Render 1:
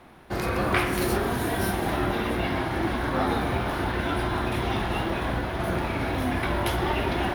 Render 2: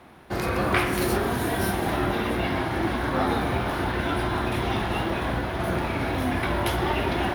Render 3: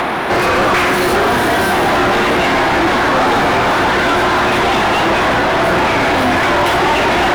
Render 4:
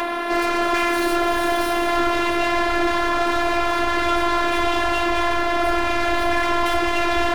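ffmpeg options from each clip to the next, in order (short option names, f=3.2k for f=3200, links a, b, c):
-af "highpass=45,volume=1dB"
-filter_complex "[0:a]acompressor=mode=upward:threshold=-29dB:ratio=2.5,asplit=2[a][b];[b]highpass=f=720:p=1,volume=33dB,asoftclip=type=tanh:threshold=-8dB[c];[a][c]amix=inputs=2:normalize=0,lowpass=f=2.1k:p=1,volume=-6dB,volume=3dB"
-af "afftfilt=real='hypot(re,im)*cos(PI*b)':imag='0':win_size=512:overlap=0.75,asubboost=boost=3:cutoff=120,volume=-4dB"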